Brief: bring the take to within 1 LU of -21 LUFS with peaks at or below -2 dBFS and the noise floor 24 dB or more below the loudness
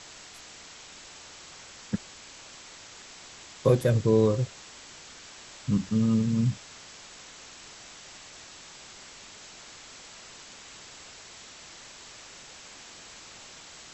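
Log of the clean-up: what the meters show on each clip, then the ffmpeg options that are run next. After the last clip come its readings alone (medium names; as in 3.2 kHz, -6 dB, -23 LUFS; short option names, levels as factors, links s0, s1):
noise floor -48 dBFS; noise floor target -51 dBFS; loudness -26.5 LUFS; peak level -8.5 dBFS; loudness target -21.0 LUFS
-> -af "afftdn=nr=6:nf=-48"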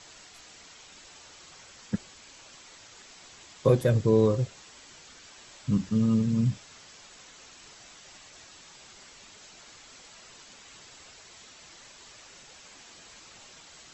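noise floor -52 dBFS; loudness -26.5 LUFS; peak level -8.5 dBFS; loudness target -21.0 LUFS
-> -af "volume=1.88"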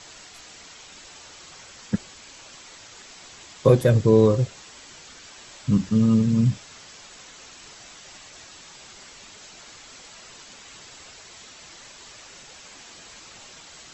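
loudness -21.0 LUFS; peak level -3.5 dBFS; noise floor -46 dBFS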